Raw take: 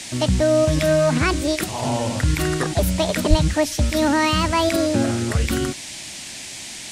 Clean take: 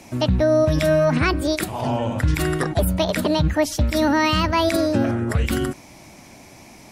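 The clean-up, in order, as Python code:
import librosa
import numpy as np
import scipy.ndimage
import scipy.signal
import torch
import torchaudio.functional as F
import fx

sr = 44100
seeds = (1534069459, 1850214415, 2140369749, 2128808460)

y = fx.fix_deplosive(x, sr, at_s=(3.29,))
y = fx.noise_reduce(y, sr, print_start_s=6.03, print_end_s=6.53, reduce_db=10.0)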